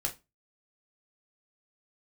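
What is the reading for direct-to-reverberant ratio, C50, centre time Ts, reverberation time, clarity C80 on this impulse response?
1.0 dB, 16.0 dB, 11 ms, 0.25 s, 23.5 dB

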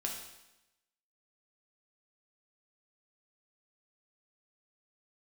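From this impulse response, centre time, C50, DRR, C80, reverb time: 39 ms, 4.5 dB, −0.5 dB, 7.0 dB, 0.95 s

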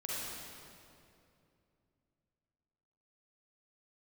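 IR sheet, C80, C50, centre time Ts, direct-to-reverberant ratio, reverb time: −2.5 dB, −5.5 dB, 173 ms, −7.0 dB, 2.6 s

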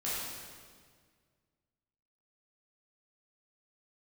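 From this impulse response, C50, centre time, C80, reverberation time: −3.0 dB, 121 ms, −0.5 dB, 1.8 s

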